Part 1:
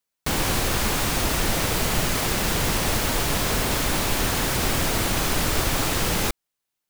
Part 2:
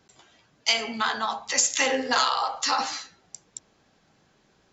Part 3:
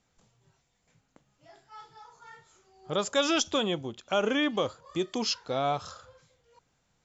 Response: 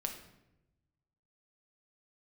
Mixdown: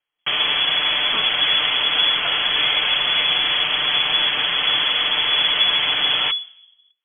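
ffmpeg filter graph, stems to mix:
-filter_complex "[0:a]aecho=1:1:6.8:0.51,volume=2dB,asplit=2[link_01][link_02];[link_02]volume=-15.5dB[link_03];[1:a]adelay=450,volume=-5dB[link_04];[2:a]volume=-13dB[link_05];[3:a]atrim=start_sample=2205[link_06];[link_03][link_06]afir=irnorm=-1:irlink=0[link_07];[link_01][link_04][link_05][link_07]amix=inputs=4:normalize=0,lowpass=frequency=2900:width_type=q:width=0.5098,lowpass=frequency=2900:width_type=q:width=0.6013,lowpass=frequency=2900:width_type=q:width=0.9,lowpass=frequency=2900:width_type=q:width=2.563,afreqshift=-3400"

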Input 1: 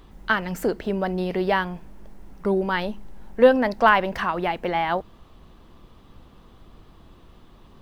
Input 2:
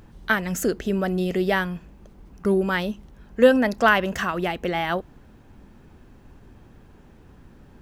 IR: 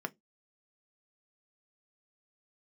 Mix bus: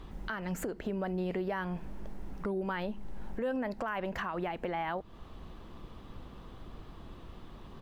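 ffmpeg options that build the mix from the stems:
-filter_complex "[0:a]alimiter=limit=-15.5dB:level=0:latency=1,highshelf=frequency=6000:gain=-6.5,acompressor=threshold=-32dB:ratio=6,volume=1.5dB,asplit=2[link_01][link_02];[1:a]volume=-12dB[link_03];[link_02]apad=whole_len=349256[link_04];[link_03][link_04]sidechaincompress=threshold=-38dB:ratio=8:attack=16:release=390[link_05];[link_01][link_05]amix=inputs=2:normalize=0,alimiter=level_in=1dB:limit=-24dB:level=0:latency=1:release=437,volume=-1dB"

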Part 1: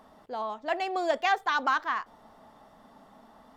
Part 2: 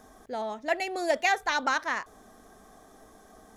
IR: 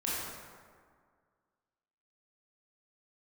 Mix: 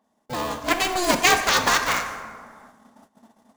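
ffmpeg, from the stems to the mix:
-filter_complex "[0:a]highpass=120,equalizer=frequency=230:width=4.3:gain=8.5,bandreject=frequency=1300:width=6.6,volume=-0.5dB,asplit=2[link_01][link_02];[link_02]volume=-10.5dB[link_03];[1:a]agate=range=-33dB:threshold=-42dB:ratio=3:detection=peak,equalizer=frequency=7200:width_type=o:width=2.5:gain=14.5,aeval=exprs='val(0)*sgn(sin(2*PI*360*n/s))':channel_layout=same,volume=-1,volume=-0.5dB,asplit=2[link_04][link_05];[link_05]volume=-10.5dB[link_06];[2:a]atrim=start_sample=2205[link_07];[link_03][link_06]amix=inputs=2:normalize=0[link_08];[link_08][link_07]afir=irnorm=-1:irlink=0[link_09];[link_01][link_04][link_09]amix=inputs=3:normalize=0,agate=range=-17dB:threshold=-49dB:ratio=16:detection=peak"

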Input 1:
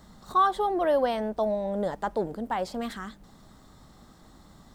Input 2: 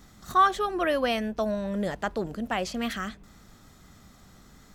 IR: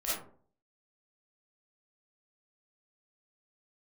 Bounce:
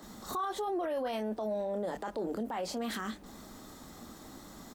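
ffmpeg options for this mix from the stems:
-filter_complex "[0:a]highpass=frequency=240:width=0.5412,highpass=frequency=240:width=1.3066,lowshelf=frequency=320:gain=10,acompressor=threshold=-29dB:ratio=4,volume=2.5dB,asplit=2[link_01][link_02];[1:a]highshelf=frequency=6100:gain=11.5,adelay=25,volume=-3dB[link_03];[link_02]apad=whole_len=210305[link_04];[link_03][link_04]sidechaincompress=threshold=-41dB:ratio=3:attack=25:release=314[link_05];[link_01][link_05]amix=inputs=2:normalize=0,alimiter=level_in=3.5dB:limit=-24dB:level=0:latency=1:release=20,volume=-3.5dB"

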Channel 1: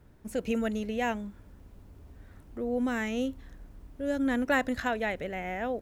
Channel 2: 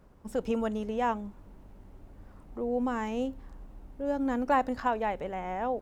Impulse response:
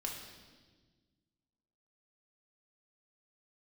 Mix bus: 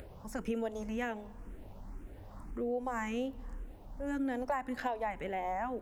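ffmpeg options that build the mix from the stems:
-filter_complex "[0:a]equalizer=frequency=3400:width_type=o:width=0.95:gain=-14.5,volume=-4.5dB[link_01];[1:a]acompressor=mode=upward:threshold=-37dB:ratio=2.5,asplit=2[link_02][link_03];[link_03]afreqshift=1.9[link_04];[link_02][link_04]amix=inputs=2:normalize=1,volume=-1,volume=0.5dB,asplit=2[link_05][link_06];[link_06]volume=-18dB[link_07];[2:a]atrim=start_sample=2205[link_08];[link_07][link_08]afir=irnorm=-1:irlink=0[link_09];[link_01][link_05][link_09]amix=inputs=3:normalize=0,acompressor=threshold=-31dB:ratio=6"

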